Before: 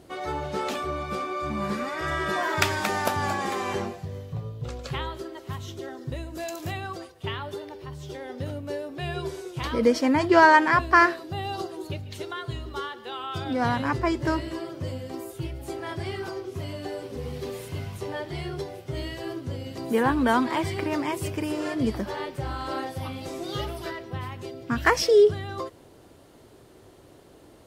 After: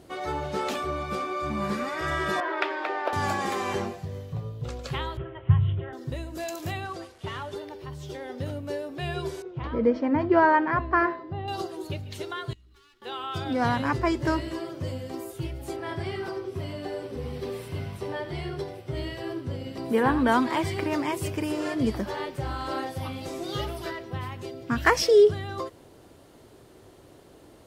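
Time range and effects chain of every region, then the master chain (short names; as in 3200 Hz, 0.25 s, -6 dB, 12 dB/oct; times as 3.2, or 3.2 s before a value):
2.4–3.13 Chebyshev high-pass 310 Hz, order 5 + air absorption 370 m
5.17–5.93 steep low-pass 3200 Hz 72 dB/oct + resonant low shelf 180 Hz +12.5 dB, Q 3 + doubler 25 ms -11.5 dB
6.85–7.56 delta modulation 64 kbps, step -48 dBFS + high shelf 9600 Hz -8.5 dB + notches 50/100/150/200/250/300/350/400/450/500 Hz
9.42–11.48 tape spacing loss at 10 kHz 42 dB + de-hum 255.7 Hz, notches 34
12.53–13.02 minimum comb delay 2.7 ms + passive tone stack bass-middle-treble 6-0-2 + compressor 5:1, threshold -53 dBFS
15.76–20.32 high shelf 5200 Hz -6 dB + notch 6700 Hz, Q 7.8 + echo 86 ms -12.5 dB
whole clip: dry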